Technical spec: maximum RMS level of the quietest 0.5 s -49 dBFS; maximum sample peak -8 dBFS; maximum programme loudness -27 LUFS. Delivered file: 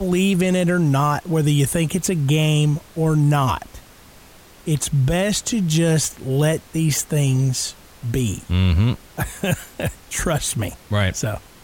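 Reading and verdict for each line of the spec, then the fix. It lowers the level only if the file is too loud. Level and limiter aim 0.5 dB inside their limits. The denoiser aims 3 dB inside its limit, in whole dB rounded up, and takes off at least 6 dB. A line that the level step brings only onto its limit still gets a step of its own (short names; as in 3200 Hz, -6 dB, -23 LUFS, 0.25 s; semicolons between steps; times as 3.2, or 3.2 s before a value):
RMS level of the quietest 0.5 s -46 dBFS: fail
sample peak -7.0 dBFS: fail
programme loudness -20.0 LUFS: fail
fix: gain -7.5 dB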